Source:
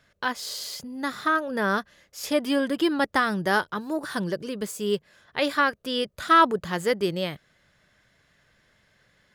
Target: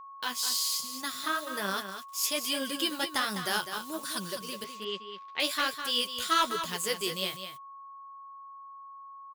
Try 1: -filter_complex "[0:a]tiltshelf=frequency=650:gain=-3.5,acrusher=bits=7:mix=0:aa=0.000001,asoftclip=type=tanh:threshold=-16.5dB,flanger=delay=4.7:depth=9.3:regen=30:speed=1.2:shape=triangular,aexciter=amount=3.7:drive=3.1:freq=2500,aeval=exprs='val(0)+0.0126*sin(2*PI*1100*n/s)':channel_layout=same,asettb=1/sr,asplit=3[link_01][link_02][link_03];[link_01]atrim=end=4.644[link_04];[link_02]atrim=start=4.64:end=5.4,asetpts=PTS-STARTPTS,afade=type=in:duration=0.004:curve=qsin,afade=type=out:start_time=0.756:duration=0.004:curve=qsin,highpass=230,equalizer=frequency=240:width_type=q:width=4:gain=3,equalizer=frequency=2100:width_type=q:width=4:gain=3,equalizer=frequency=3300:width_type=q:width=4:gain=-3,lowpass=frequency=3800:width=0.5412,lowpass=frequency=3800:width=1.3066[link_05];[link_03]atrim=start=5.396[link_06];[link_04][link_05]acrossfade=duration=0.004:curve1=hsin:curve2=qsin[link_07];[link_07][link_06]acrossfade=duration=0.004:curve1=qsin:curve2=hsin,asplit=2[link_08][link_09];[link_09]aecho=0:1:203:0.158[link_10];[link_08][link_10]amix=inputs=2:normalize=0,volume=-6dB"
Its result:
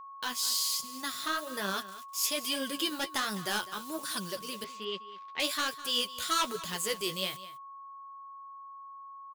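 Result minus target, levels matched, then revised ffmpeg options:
soft clipping: distortion +11 dB; echo-to-direct −7 dB
-filter_complex "[0:a]tiltshelf=frequency=650:gain=-3.5,acrusher=bits=7:mix=0:aa=0.000001,asoftclip=type=tanh:threshold=-8dB,flanger=delay=4.7:depth=9.3:regen=30:speed=1.2:shape=triangular,aexciter=amount=3.7:drive=3.1:freq=2500,aeval=exprs='val(0)+0.0126*sin(2*PI*1100*n/s)':channel_layout=same,asettb=1/sr,asplit=3[link_01][link_02][link_03];[link_01]atrim=end=4.644[link_04];[link_02]atrim=start=4.64:end=5.4,asetpts=PTS-STARTPTS,afade=type=in:duration=0.004:curve=qsin,afade=type=out:start_time=0.756:duration=0.004:curve=qsin,highpass=230,equalizer=frequency=240:width_type=q:width=4:gain=3,equalizer=frequency=2100:width_type=q:width=4:gain=3,equalizer=frequency=3300:width_type=q:width=4:gain=-3,lowpass=frequency=3800:width=0.5412,lowpass=frequency=3800:width=1.3066[link_05];[link_03]atrim=start=5.396[link_06];[link_04][link_05]acrossfade=duration=0.004:curve1=hsin:curve2=qsin[link_07];[link_07][link_06]acrossfade=duration=0.004:curve1=qsin:curve2=hsin,asplit=2[link_08][link_09];[link_09]aecho=0:1:203:0.355[link_10];[link_08][link_10]amix=inputs=2:normalize=0,volume=-6dB"

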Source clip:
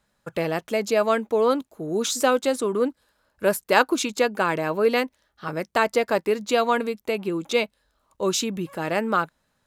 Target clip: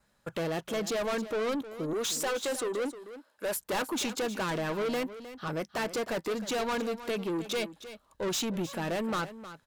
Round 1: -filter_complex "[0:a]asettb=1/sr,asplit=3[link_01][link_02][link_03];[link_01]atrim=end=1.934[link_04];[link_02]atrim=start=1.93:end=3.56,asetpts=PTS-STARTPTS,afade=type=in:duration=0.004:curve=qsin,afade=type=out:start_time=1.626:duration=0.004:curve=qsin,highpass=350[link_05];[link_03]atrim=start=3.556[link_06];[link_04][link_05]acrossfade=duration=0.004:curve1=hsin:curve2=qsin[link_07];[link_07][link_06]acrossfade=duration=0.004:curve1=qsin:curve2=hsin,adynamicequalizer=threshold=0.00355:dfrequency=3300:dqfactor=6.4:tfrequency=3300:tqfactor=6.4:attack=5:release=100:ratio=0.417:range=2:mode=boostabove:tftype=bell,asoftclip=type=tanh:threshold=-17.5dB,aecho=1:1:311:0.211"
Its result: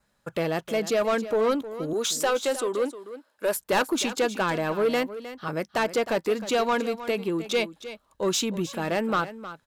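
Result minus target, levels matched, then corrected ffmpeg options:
soft clipping: distortion −7 dB
-filter_complex "[0:a]asettb=1/sr,asplit=3[link_01][link_02][link_03];[link_01]atrim=end=1.934[link_04];[link_02]atrim=start=1.93:end=3.56,asetpts=PTS-STARTPTS,afade=type=in:duration=0.004:curve=qsin,afade=type=out:start_time=1.626:duration=0.004:curve=qsin,highpass=350[link_05];[link_03]atrim=start=3.556[link_06];[link_04][link_05]acrossfade=duration=0.004:curve1=hsin:curve2=qsin[link_07];[link_07][link_06]acrossfade=duration=0.004:curve1=qsin:curve2=hsin,adynamicequalizer=threshold=0.00355:dfrequency=3300:dqfactor=6.4:tfrequency=3300:tqfactor=6.4:attack=5:release=100:ratio=0.417:range=2:mode=boostabove:tftype=bell,asoftclip=type=tanh:threshold=-28.5dB,aecho=1:1:311:0.211"

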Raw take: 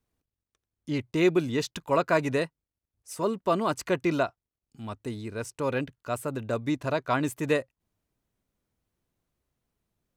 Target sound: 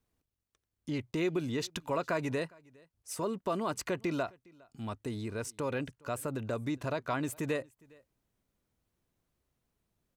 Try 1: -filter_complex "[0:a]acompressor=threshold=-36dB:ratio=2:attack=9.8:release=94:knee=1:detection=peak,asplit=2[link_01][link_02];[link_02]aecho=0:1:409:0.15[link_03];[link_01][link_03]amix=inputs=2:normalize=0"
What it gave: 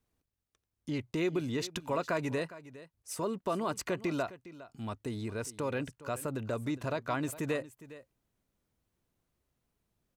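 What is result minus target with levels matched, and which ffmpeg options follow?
echo-to-direct +9.5 dB
-filter_complex "[0:a]acompressor=threshold=-36dB:ratio=2:attack=9.8:release=94:knee=1:detection=peak,asplit=2[link_01][link_02];[link_02]aecho=0:1:409:0.0501[link_03];[link_01][link_03]amix=inputs=2:normalize=0"

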